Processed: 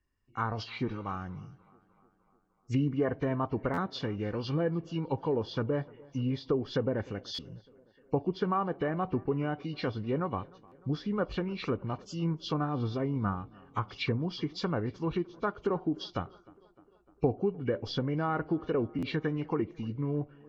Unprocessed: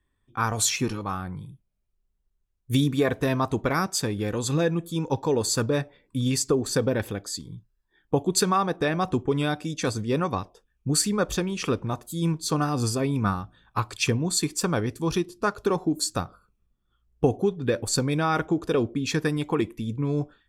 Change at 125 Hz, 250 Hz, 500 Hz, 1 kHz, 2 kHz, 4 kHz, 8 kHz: -6.0 dB, -6.0 dB, -6.0 dB, -6.5 dB, -9.0 dB, -10.5 dB, under -25 dB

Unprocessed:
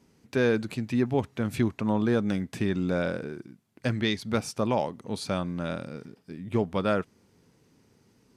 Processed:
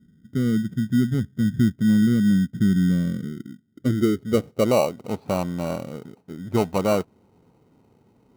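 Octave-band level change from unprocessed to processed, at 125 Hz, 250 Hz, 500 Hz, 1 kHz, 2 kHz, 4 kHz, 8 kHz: +7.5, +7.5, +3.5, +2.0, -1.5, 0.0, +4.5 dB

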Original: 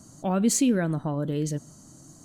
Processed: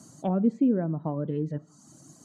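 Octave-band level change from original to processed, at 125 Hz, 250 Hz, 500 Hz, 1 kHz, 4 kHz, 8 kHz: -2.0 dB, -1.0 dB, -1.5 dB, -3.0 dB, under -20 dB, under -20 dB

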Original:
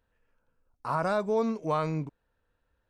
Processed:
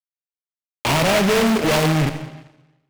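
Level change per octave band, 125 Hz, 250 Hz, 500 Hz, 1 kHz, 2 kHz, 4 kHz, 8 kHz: +14.0 dB, +13.5 dB, +9.5 dB, +8.5 dB, +17.5 dB, +26.0 dB, n/a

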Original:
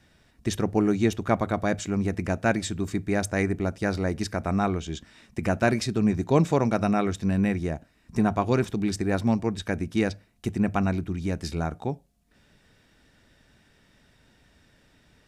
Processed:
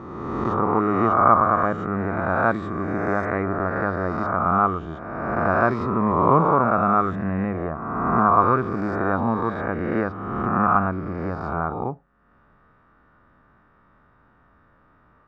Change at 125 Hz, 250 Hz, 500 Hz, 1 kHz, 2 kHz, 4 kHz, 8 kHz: +0.5 dB, +0.5 dB, +3.5 dB, +12.5 dB, +5.0 dB, under -10 dB, under -25 dB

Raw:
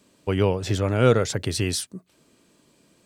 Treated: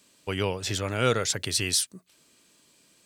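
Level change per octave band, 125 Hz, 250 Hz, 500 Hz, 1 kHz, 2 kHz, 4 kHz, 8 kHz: -8.5, -8.0, -7.0, -2.5, +0.5, +3.0, +4.0 dB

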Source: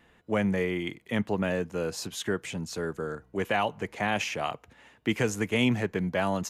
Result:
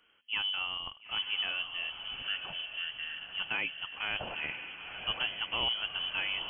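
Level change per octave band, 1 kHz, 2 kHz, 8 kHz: -9.5 dB, -1.5 dB, under -40 dB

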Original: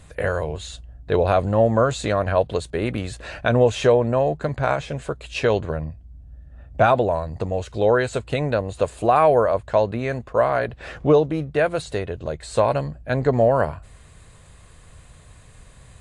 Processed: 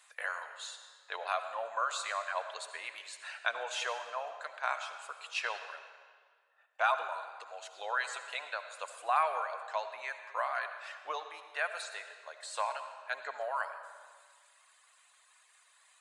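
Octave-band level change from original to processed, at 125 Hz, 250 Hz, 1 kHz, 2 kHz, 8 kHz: under -40 dB, under -40 dB, -10.5 dB, -6.5 dB, n/a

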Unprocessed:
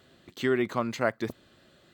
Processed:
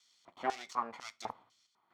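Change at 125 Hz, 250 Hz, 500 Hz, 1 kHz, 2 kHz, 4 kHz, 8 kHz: -25.5, -20.5, -16.5, -1.5, -13.0, -7.5, -4.5 dB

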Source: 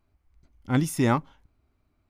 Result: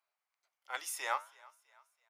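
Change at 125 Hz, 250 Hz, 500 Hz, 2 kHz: under -40 dB, under -40 dB, -16.5 dB, -5.0 dB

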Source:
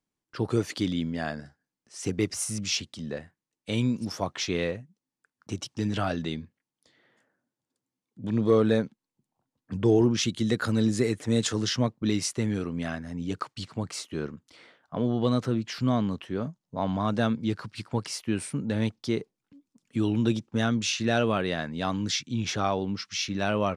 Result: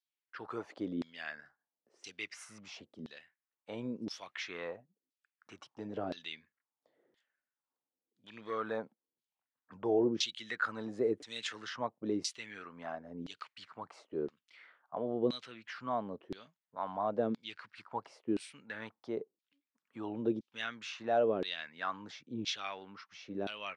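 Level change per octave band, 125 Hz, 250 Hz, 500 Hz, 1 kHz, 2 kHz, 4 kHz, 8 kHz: -22.0, -13.0, -7.5, -6.5, -7.0, -9.5, -15.5 dB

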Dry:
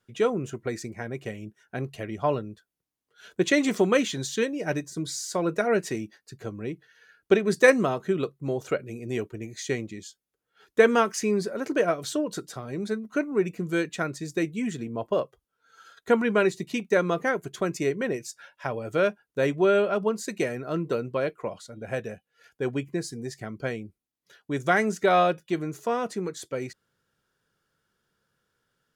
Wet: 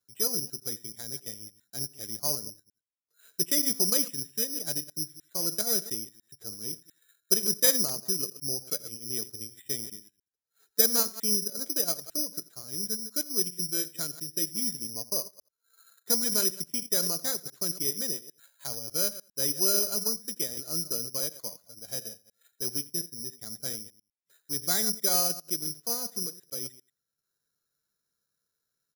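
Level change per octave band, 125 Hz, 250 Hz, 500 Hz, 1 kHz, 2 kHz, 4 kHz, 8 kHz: -10.5, -11.5, -14.0, -15.0, -15.5, +7.0, +11.5 dB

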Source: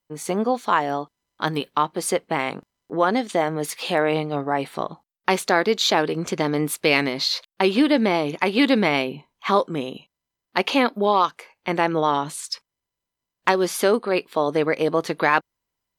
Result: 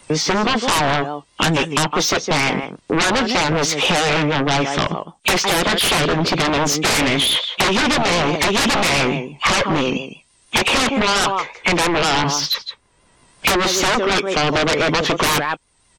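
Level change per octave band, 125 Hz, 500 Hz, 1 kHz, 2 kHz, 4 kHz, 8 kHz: +8.5, +1.5, +3.5, +7.0, +10.0, +11.5 dB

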